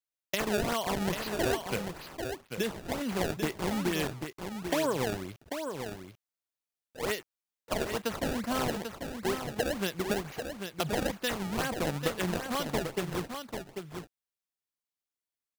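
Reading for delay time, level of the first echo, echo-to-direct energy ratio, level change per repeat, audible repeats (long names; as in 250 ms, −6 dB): 792 ms, −7.0 dB, −7.0 dB, repeats not evenly spaced, 1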